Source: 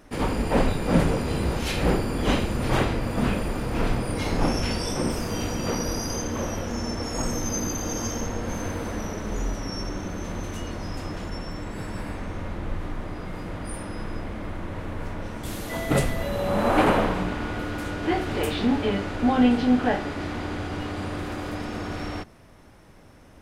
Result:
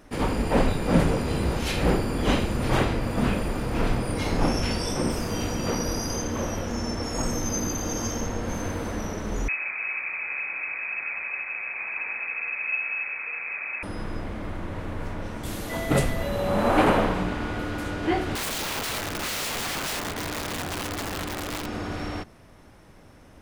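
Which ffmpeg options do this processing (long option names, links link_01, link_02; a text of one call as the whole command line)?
ffmpeg -i in.wav -filter_complex "[0:a]asettb=1/sr,asplit=3[link_01][link_02][link_03];[link_01]atrim=end=9.484[link_04];[link_02]atrim=start=9.48:end=13.83,asetpts=PTS-STARTPTS,afade=type=in:duration=0.004:curve=qsin,afade=type=out:start_time=4.346:duration=0.004:curve=qsin,lowpass=frequency=2200:width_type=q:width=0.5098,lowpass=frequency=2200:width_type=q:width=0.6013,lowpass=frequency=2200:width_type=q:width=0.9,lowpass=frequency=2200:width_type=q:width=2.563,afreqshift=-2600[link_05];[link_03]atrim=start=13.826[link_06];[link_04][link_05]acrossfade=duration=0.004:curve1=hsin:curve2=qsin[link_07];[link_07][link_06]acrossfade=duration=0.004:curve1=qsin:curve2=hsin,asettb=1/sr,asplit=3[link_08][link_09][link_10];[link_08]atrim=end=18.354[link_11];[link_09]atrim=start=18.35:end=21.66,asetpts=PTS-STARTPTS,afade=type=in:duration=0.004:curve=qsin,afade=type=out:start_time=3.306:duration=0.004:curve=qsin,aeval=exprs='(mod(17.8*val(0)+1,2)-1)/17.8':channel_layout=same[link_12];[link_10]atrim=start=21.656[link_13];[link_11][link_12]acrossfade=duration=0.004:curve1=hsin:curve2=qsin[link_14];[link_14][link_13]acrossfade=duration=0.004:curve1=qsin:curve2=hsin" out.wav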